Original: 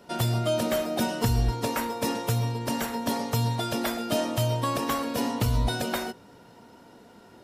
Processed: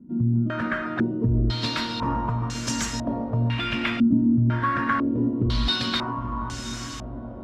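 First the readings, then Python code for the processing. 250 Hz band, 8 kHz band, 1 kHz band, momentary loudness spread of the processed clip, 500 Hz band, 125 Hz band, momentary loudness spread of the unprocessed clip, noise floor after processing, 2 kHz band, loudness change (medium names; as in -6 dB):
+7.0 dB, -0.5 dB, +2.0 dB, 10 LU, -5.0 dB, +3.0 dB, 4 LU, -35 dBFS, +6.0 dB, +3.0 dB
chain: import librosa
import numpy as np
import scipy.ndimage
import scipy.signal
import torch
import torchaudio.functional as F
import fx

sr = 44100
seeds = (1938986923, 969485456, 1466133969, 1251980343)

p1 = 10.0 ** (-25.5 / 20.0) * (np.abs((x / 10.0 ** (-25.5 / 20.0) + 3.0) % 4.0 - 2.0) - 1.0)
p2 = x + F.gain(torch.from_numpy(p1), -11.0).numpy()
p3 = fx.band_shelf(p2, sr, hz=590.0, db=-11.0, octaves=1.3)
p4 = fx.echo_diffused(p3, sr, ms=900, feedback_pct=59, wet_db=-7.5)
y = fx.filter_held_lowpass(p4, sr, hz=2.0, low_hz=250.0, high_hz=6600.0)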